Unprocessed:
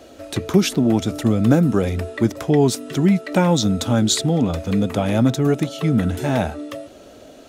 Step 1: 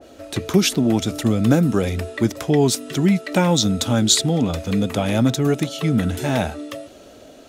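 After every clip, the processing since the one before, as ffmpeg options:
ffmpeg -i in.wav -af "adynamicequalizer=threshold=0.0158:dfrequency=1900:dqfactor=0.7:tfrequency=1900:tqfactor=0.7:attack=5:release=100:ratio=0.375:range=2.5:mode=boostabove:tftype=highshelf,volume=-1dB" out.wav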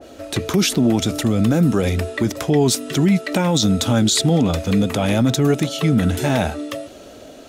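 ffmpeg -i in.wav -af "alimiter=limit=-12.5dB:level=0:latency=1:release=20,volume=4dB" out.wav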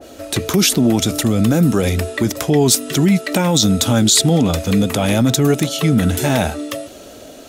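ffmpeg -i in.wav -af "crystalizer=i=1:c=0,volume=2dB" out.wav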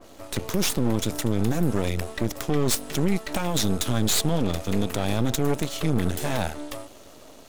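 ffmpeg -i in.wav -af "aeval=exprs='max(val(0),0)':channel_layout=same,volume=-6dB" out.wav

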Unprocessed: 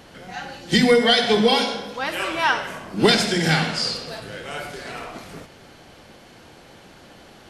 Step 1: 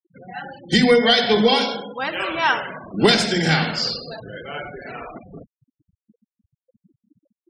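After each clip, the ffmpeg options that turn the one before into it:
ffmpeg -i in.wav -af "afftfilt=real='re*gte(hypot(re,im),0.0316)':imag='im*gte(hypot(re,im),0.0316)':win_size=1024:overlap=0.75,volume=1dB" out.wav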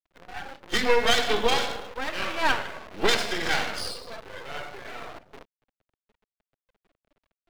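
ffmpeg -i in.wav -filter_complex "[0:a]acrusher=bits=7:dc=4:mix=0:aa=0.000001,acrossover=split=330 4300:gain=0.0891 1 0.178[link_01][link_02][link_03];[link_01][link_02][link_03]amix=inputs=3:normalize=0,aeval=exprs='max(val(0),0)':channel_layout=same" out.wav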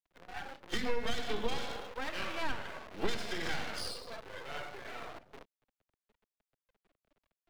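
ffmpeg -i in.wav -filter_complex "[0:a]acrossover=split=280[link_01][link_02];[link_02]acompressor=threshold=-29dB:ratio=10[link_03];[link_01][link_03]amix=inputs=2:normalize=0,volume=-5.5dB" out.wav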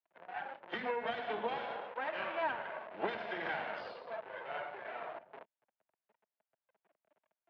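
ffmpeg -i in.wav -af "highpass=210,equalizer=frequency=270:width_type=q:width=4:gain=-5,equalizer=frequency=640:width_type=q:width=4:gain=9,equalizer=frequency=910:width_type=q:width=4:gain=7,equalizer=frequency=1600:width_type=q:width=4:gain=4,lowpass=frequency=2900:width=0.5412,lowpass=frequency=2900:width=1.3066,volume=-2.5dB" out.wav

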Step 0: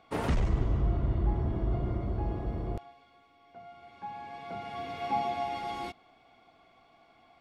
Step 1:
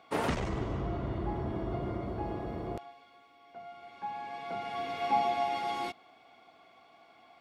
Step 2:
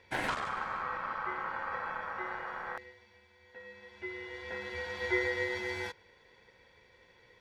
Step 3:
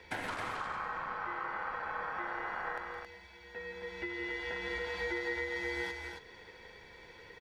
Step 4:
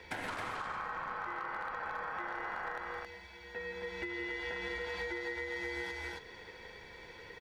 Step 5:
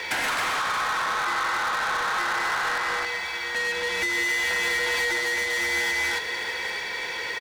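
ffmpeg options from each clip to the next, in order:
ffmpeg -i in.wav -af "highpass=frequency=280:poles=1,volume=3dB" out.wav
ffmpeg -i in.wav -af "aeval=exprs='val(0)*sin(2*PI*1200*n/s)':channel_layout=same" out.wav
ffmpeg -i in.wav -af "afreqshift=-18,acompressor=threshold=-44dB:ratio=5,aecho=1:1:166.2|207|271.1:0.355|0.282|0.562,volume=6.5dB" out.wav
ffmpeg -i in.wav -af "acompressor=threshold=-38dB:ratio=6,asoftclip=type=hard:threshold=-33dB,volume=2.5dB" out.wav
ffmpeg -i in.wav -filter_complex "[0:a]asplit=2[link_01][link_02];[link_02]highpass=frequency=720:poles=1,volume=19dB,asoftclip=type=tanh:threshold=-30dB[link_03];[link_01][link_03]amix=inputs=2:normalize=0,lowpass=frequency=1200:poles=1,volume=-6dB,crystalizer=i=10:c=0,aecho=1:1:626:0.211,volume=6dB" out.wav

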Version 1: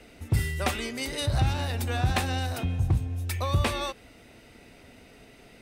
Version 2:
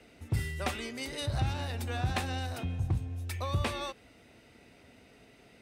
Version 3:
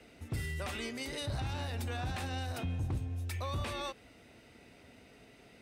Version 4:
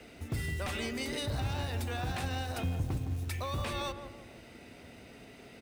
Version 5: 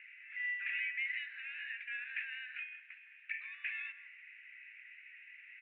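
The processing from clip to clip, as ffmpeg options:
ffmpeg -i in.wav -af "highpass=54,highshelf=frequency=12000:gain=-7,volume=-5.5dB" out.wav
ffmpeg -i in.wav -filter_complex "[0:a]acrossover=split=1100[link_01][link_02];[link_01]volume=30dB,asoftclip=hard,volume=-30dB[link_03];[link_03][link_02]amix=inputs=2:normalize=0,alimiter=level_in=5.5dB:limit=-24dB:level=0:latency=1,volume=-5.5dB" out.wav
ffmpeg -i in.wav -filter_complex "[0:a]asplit=2[link_01][link_02];[link_02]acompressor=threshold=-42dB:ratio=6,volume=1.5dB[link_03];[link_01][link_03]amix=inputs=2:normalize=0,acrusher=bits=6:mode=log:mix=0:aa=0.000001,asplit=2[link_04][link_05];[link_05]adelay=163,lowpass=frequency=830:poles=1,volume=-6.5dB,asplit=2[link_06][link_07];[link_07]adelay=163,lowpass=frequency=830:poles=1,volume=0.52,asplit=2[link_08][link_09];[link_09]adelay=163,lowpass=frequency=830:poles=1,volume=0.52,asplit=2[link_10][link_11];[link_11]adelay=163,lowpass=frequency=830:poles=1,volume=0.52,asplit=2[link_12][link_13];[link_13]adelay=163,lowpass=frequency=830:poles=1,volume=0.52,asplit=2[link_14][link_15];[link_15]adelay=163,lowpass=frequency=830:poles=1,volume=0.52[link_16];[link_04][link_06][link_08][link_10][link_12][link_14][link_16]amix=inputs=7:normalize=0,volume=-1.5dB" out.wav
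ffmpeg -i in.wav -af "asuperpass=centerf=2100:order=8:qfactor=2.1,volume=6dB" out.wav

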